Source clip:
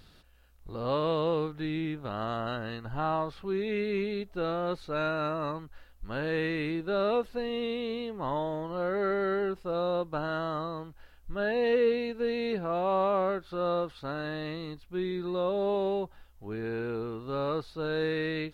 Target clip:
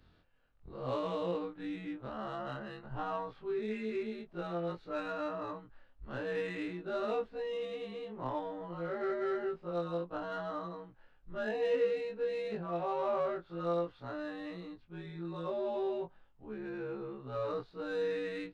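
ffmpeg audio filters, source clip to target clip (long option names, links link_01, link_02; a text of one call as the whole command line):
ffmpeg -i in.wav -af "afftfilt=real='re':imag='-im':win_size=2048:overlap=0.75,adynamicsmooth=sensitivity=7.5:basefreq=3000,volume=-2dB" out.wav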